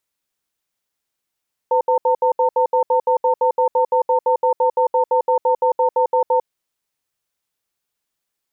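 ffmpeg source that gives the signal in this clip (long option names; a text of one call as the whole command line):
ffmpeg -f lavfi -i "aevalsrc='0.168*(sin(2*PI*506*t)+sin(2*PI*906*t))*clip(min(mod(t,0.17),0.1-mod(t,0.17))/0.005,0,1)':duration=4.71:sample_rate=44100" out.wav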